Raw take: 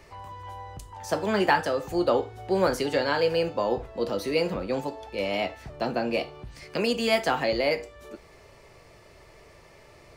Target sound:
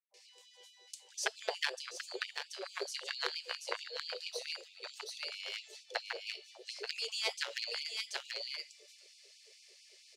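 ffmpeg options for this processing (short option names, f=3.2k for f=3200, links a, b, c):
-filter_complex "[0:a]asplit=2[a][b];[b]aecho=0:1:732:0.562[c];[a][c]amix=inputs=2:normalize=0,acompressor=threshold=-29dB:ratio=6,highpass=240,lowpass=7.1k,acrossover=split=320|3200[d][e][f];[e]acrusher=bits=3:mix=0:aa=0.5[g];[d][g][f]amix=inputs=3:normalize=0,acrossover=split=740[h][i];[i]adelay=140[j];[h][j]amix=inputs=2:normalize=0,afftfilt=real='re*gte(b*sr/1024,360*pow(2300/360,0.5+0.5*sin(2*PI*4.5*pts/sr)))':imag='im*gte(b*sr/1024,360*pow(2300/360,0.5+0.5*sin(2*PI*4.5*pts/sr)))':win_size=1024:overlap=0.75,volume=5.5dB"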